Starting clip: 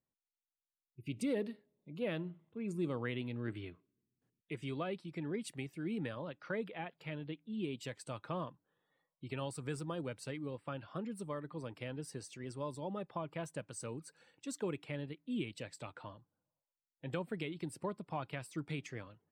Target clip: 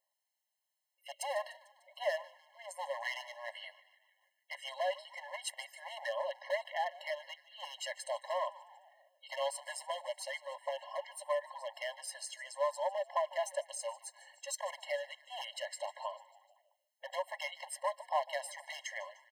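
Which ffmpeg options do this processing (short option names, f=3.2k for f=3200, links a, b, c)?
-filter_complex "[0:a]volume=35dB,asoftclip=hard,volume=-35dB,asplit=6[a][b][c][d][e][f];[b]adelay=149,afreqshift=-110,volume=-18.5dB[g];[c]adelay=298,afreqshift=-220,volume=-22.9dB[h];[d]adelay=447,afreqshift=-330,volume=-27.4dB[i];[e]adelay=596,afreqshift=-440,volume=-31.8dB[j];[f]adelay=745,afreqshift=-550,volume=-36.2dB[k];[a][g][h][i][j][k]amix=inputs=6:normalize=0,afftfilt=real='re*eq(mod(floor(b*sr/1024/550),2),1)':imag='im*eq(mod(floor(b*sr/1024/550),2),1)':win_size=1024:overlap=0.75,volume=11.5dB"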